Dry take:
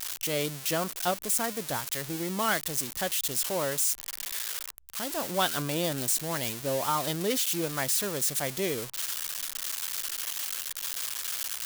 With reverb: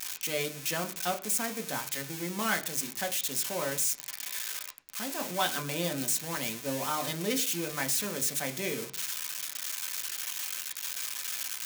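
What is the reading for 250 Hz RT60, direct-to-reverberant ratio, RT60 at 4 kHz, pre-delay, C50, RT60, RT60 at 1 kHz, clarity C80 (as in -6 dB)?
0.70 s, 4.5 dB, 0.50 s, 3 ms, 16.5 dB, 0.45 s, 0.40 s, 20.0 dB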